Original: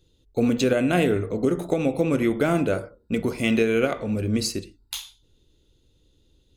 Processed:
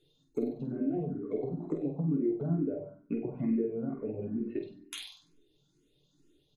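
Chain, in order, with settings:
reverb reduction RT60 0.57 s
0:02.42–0:04.57: low-pass filter 2,400 Hz 24 dB per octave
treble cut that deepens with the level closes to 360 Hz, closed at −20.5 dBFS
low shelf with overshoot 110 Hz −11.5 dB, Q 3
comb filter 2.8 ms, depth 38%
downward compressor, threshold −24 dBFS, peak gain reduction 8 dB
flutter between parallel walls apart 8.3 metres, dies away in 0.53 s
convolution reverb RT60 0.45 s, pre-delay 7 ms, DRR 4.5 dB
frequency shifter mixed with the dry sound +2.2 Hz
level −4 dB

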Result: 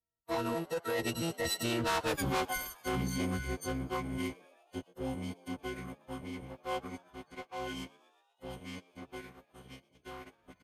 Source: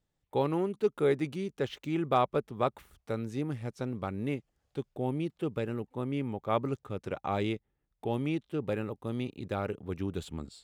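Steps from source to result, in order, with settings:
every partial snapped to a pitch grid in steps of 6 semitones
source passing by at 0:02.17, 41 m/s, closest 3.9 metres
in parallel at 0 dB: compressor whose output falls as the input rises −49 dBFS, ratio −0.5
on the sum: leveller curve on the samples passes 3
soft clipping −32 dBFS, distortion −8 dB
on a send: echo with shifted repeats 121 ms, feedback 65%, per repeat +130 Hz, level −23.5 dB
on the sum: phase-vocoder pitch shift with formants kept −7 semitones
level +3 dB

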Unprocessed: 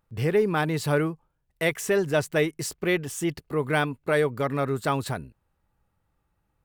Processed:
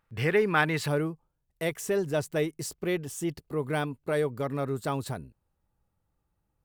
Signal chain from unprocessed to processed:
parametric band 1,900 Hz +9 dB 1.9 octaves, from 0:00.88 −5.5 dB
level −3.5 dB

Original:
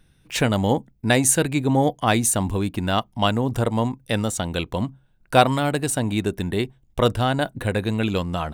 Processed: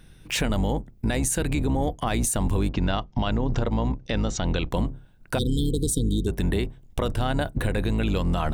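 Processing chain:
sub-octave generator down 2 octaves, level +1 dB
0:02.70–0:04.71: Butterworth low-pass 6,500 Hz 48 dB per octave
0:05.38–0:06.28: time-frequency box erased 500–3,100 Hz
downward compressor 5 to 1, threshold −24 dBFS, peak gain reduction 11.5 dB
brickwall limiter −22.5 dBFS, peak gain reduction 9 dB
level +7 dB

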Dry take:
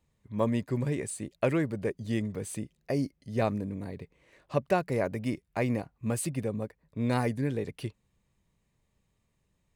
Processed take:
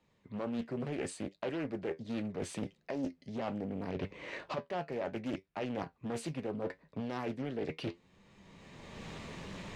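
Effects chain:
camcorder AGC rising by 22 dB per second
in parallel at −3.5 dB: wave folding −22.5 dBFS
on the sum: flanger 0.72 Hz, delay 9.8 ms, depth 3.4 ms, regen +62%
three-way crossover with the lows and the highs turned down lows −13 dB, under 160 Hz, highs −22 dB, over 5,900 Hz
reversed playback
downward compressor 6 to 1, threshold −39 dBFS, peak gain reduction 17 dB
reversed playback
highs frequency-modulated by the lows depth 0.52 ms
level +4.5 dB

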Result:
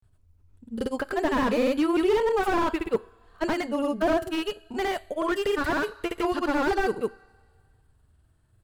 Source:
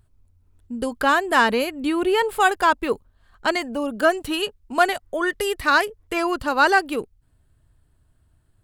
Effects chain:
granular cloud, pitch spread up and down by 0 semitones
coupled-rooms reverb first 0.41 s, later 1.9 s, from −17 dB, DRR 19 dB
slew-rate limiting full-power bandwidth 64 Hz

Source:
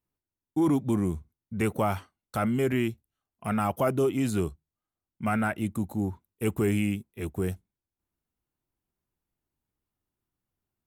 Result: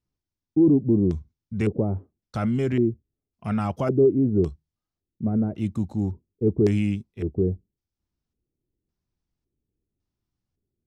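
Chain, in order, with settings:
low-shelf EQ 320 Hz +10.5 dB
auto-filter low-pass square 0.9 Hz 420–5,400 Hz
level −4 dB

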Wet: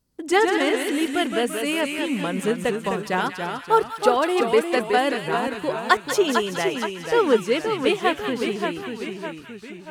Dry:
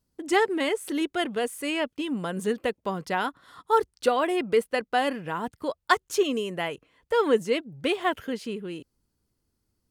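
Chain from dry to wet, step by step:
delay with a high-pass on its return 189 ms, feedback 46%, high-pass 1,800 Hz, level −6 dB
delay with pitch and tempo change per echo 99 ms, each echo −1 semitone, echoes 3, each echo −6 dB
level +3.5 dB

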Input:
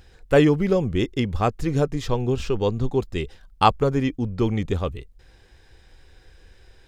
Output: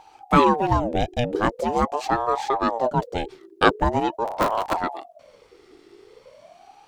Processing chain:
0:04.25–0:04.77: sub-harmonics by changed cycles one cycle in 3, inverted
ring modulator whose carrier an LFO sweeps 600 Hz, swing 40%, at 0.43 Hz
level +2.5 dB

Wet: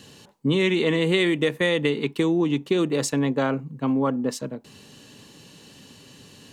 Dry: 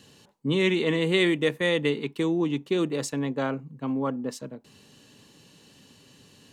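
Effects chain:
downward compressor, threshold −24 dBFS, peak gain reduction 6.5 dB
level +6.5 dB

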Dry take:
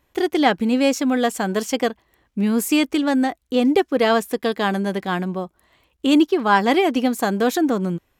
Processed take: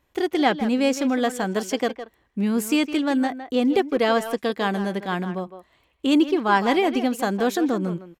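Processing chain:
high-shelf EQ 12,000 Hz −5.5 dB
far-end echo of a speakerphone 160 ms, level −10 dB
level −3 dB

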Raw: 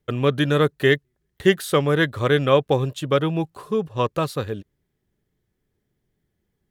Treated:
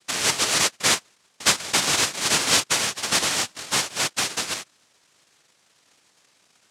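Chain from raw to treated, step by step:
power curve on the samples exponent 0.7
cochlear-implant simulation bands 1
level −6.5 dB

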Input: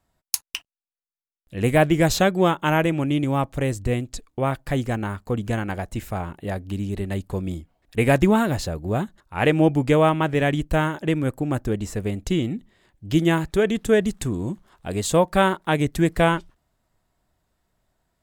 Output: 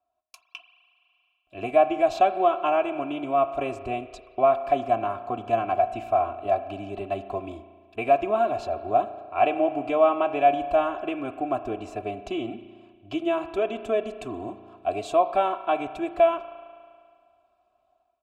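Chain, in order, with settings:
downward compressor 2 to 1, threshold −21 dBFS, peak gain reduction 5.5 dB
on a send at −11 dB: convolution reverb RT60 1.8 s, pre-delay 35 ms
on the sum: automatic gain control gain up to 11.5 dB
formant filter a
low-shelf EQ 160 Hz +9.5 dB
comb filter 3 ms, depth 90%

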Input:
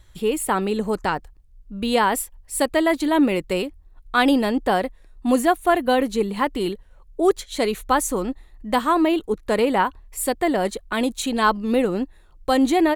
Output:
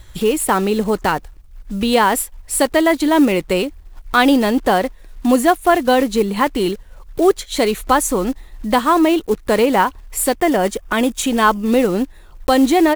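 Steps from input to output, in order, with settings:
one scale factor per block 5 bits
0:10.37–0:11.67: notch filter 4,100 Hz, Q 6.2
in parallel at +3 dB: downward compressor, threshold −32 dBFS, peak gain reduction 18.5 dB
on the sum: level +3 dB

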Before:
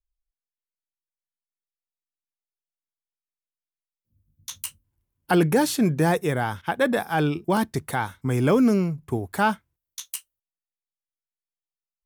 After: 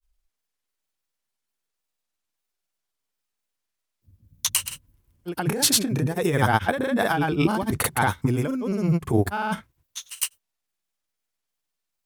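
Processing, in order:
compressor whose output falls as the input rises −28 dBFS, ratio −1
granular cloud, pitch spread up and down by 0 semitones
level +7 dB

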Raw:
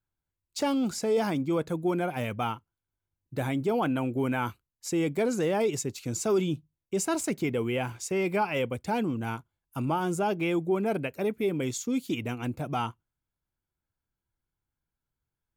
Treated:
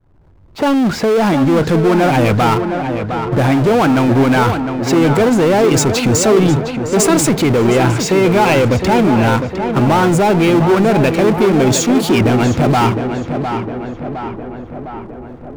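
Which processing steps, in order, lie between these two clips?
fade in at the beginning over 1.93 s
low-pass that shuts in the quiet parts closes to 750 Hz, open at −27.5 dBFS
low-pass filter 2,800 Hz 6 dB per octave
in parallel at +0.5 dB: compressor whose output falls as the input rises −35 dBFS
on the sum: power curve on the samples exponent 0.5
on a send: tape delay 709 ms, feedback 71%, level −5.5 dB, low-pass 2,200 Hz
on the sum: level +8 dB

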